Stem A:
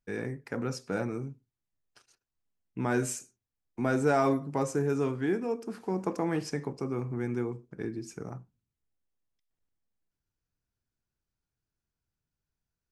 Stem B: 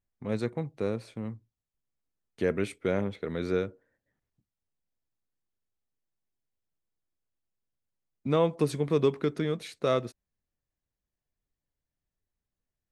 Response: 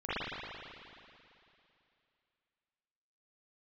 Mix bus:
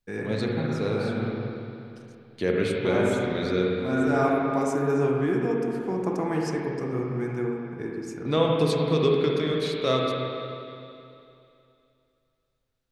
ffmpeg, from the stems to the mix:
-filter_complex "[0:a]volume=-1dB,asplit=2[a][b];[b]volume=-6dB[c];[1:a]equalizer=f=4.1k:t=o:w=0.91:g=10,volume=-2dB,asplit=3[d][e][f];[e]volume=-5dB[g];[f]apad=whole_len=569741[h];[a][h]sidechaincompress=threshold=-44dB:ratio=8:attack=16:release=596[i];[2:a]atrim=start_sample=2205[j];[c][g]amix=inputs=2:normalize=0[k];[k][j]afir=irnorm=-1:irlink=0[l];[i][d][l]amix=inputs=3:normalize=0"

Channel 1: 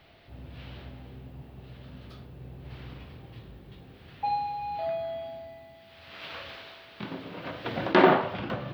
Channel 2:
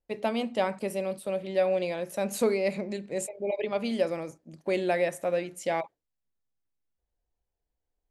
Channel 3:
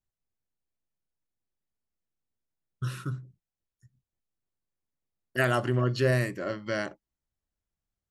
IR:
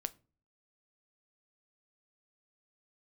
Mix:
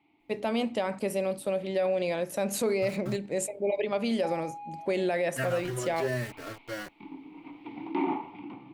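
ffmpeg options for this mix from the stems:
-filter_complex "[0:a]asplit=3[a][b][c];[a]bandpass=f=300:t=q:w=8,volume=0dB[d];[b]bandpass=f=870:t=q:w=8,volume=-6dB[e];[c]bandpass=f=2.24k:t=q:w=8,volume=-9dB[f];[d][e][f]amix=inputs=3:normalize=0,volume=0dB,asplit=2[g][h];[h]volume=-8.5dB[i];[1:a]adelay=200,volume=0dB,asplit=2[j][k];[k]volume=-8dB[l];[2:a]aeval=exprs='val(0)*gte(abs(val(0)),0.0237)':c=same,asplit=2[m][n];[n]adelay=3.8,afreqshift=0.9[o];[m][o]amix=inputs=2:normalize=1,volume=-4.5dB,asplit=2[p][q];[q]volume=-14.5dB[r];[3:a]atrim=start_sample=2205[s];[i][l][r]amix=inputs=3:normalize=0[t];[t][s]afir=irnorm=-1:irlink=0[u];[g][j][p][u]amix=inputs=4:normalize=0,alimiter=limit=-19.5dB:level=0:latency=1:release=55"

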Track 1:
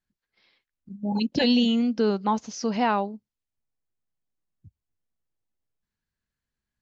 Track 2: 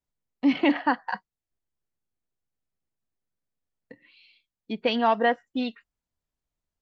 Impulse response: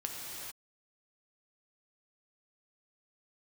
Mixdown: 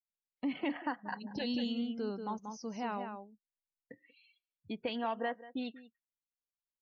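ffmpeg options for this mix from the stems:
-filter_complex "[0:a]volume=-15dB,asplit=2[a][b];[b]volume=-6.5dB[c];[1:a]acompressor=threshold=-34dB:ratio=2,volume=-5dB,asplit=3[d][e][f];[e]volume=-16.5dB[g];[f]apad=whole_len=300699[h];[a][h]sidechaincompress=threshold=-43dB:ratio=8:attack=12:release=238[i];[c][g]amix=inputs=2:normalize=0,aecho=0:1:186:1[j];[i][d][j]amix=inputs=3:normalize=0,afftdn=nr=22:nf=-57"

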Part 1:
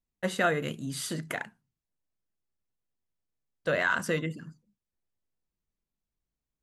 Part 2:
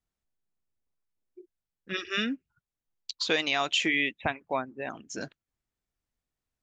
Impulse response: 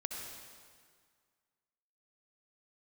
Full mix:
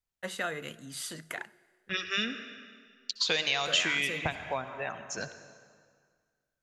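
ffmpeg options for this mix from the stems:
-filter_complex "[0:a]lowshelf=f=490:g=-11,volume=-3dB,asplit=2[a][b];[b]volume=-20.5dB[c];[1:a]agate=range=-7dB:threshold=-52dB:ratio=16:detection=peak,equalizer=f=290:t=o:w=0.85:g=-13,volume=-0.5dB,asplit=2[d][e];[e]volume=-5dB[f];[2:a]atrim=start_sample=2205[g];[c][f]amix=inputs=2:normalize=0[h];[h][g]afir=irnorm=-1:irlink=0[i];[a][d][i]amix=inputs=3:normalize=0,acrossover=split=410|3000[j][k][l];[k]acompressor=threshold=-31dB:ratio=6[m];[j][m][l]amix=inputs=3:normalize=0"

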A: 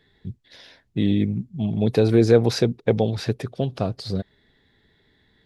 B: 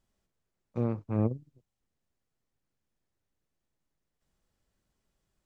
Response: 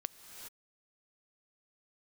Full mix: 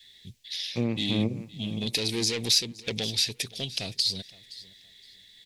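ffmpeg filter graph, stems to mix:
-filter_complex "[0:a]asoftclip=type=tanh:threshold=-16.5dB,volume=-12dB,asplit=2[a][b];[b]volume=-22.5dB[c];[1:a]lowpass=f=1.6k:p=1,volume=2.5dB,asplit=2[d][e];[e]volume=-17dB[f];[c][f]amix=inputs=2:normalize=0,aecho=0:1:517|1034|1551|2068:1|0.25|0.0625|0.0156[g];[a][d][g]amix=inputs=3:normalize=0,adynamicequalizer=threshold=0.01:dfrequency=260:dqfactor=1.2:tfrequency=260:tqfactor=1.2:attack=5:release=100:ratio=0.375:range=3:mode=boostabove:tftype=bell,aexciter=amount=10.9:drive=8.7:freq=2.1k,acompressor=threshold=-25dB:ratio=2"

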